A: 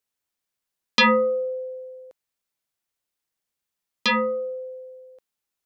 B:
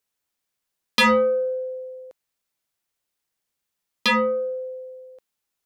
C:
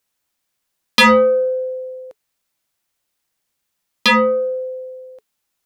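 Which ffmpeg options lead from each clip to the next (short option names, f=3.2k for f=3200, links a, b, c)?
-af "asoftclip=type=tanh:threshold=-15.5dB,volume=3dB"
-af "bandreject=f=430:w=12,volume=6.5dB"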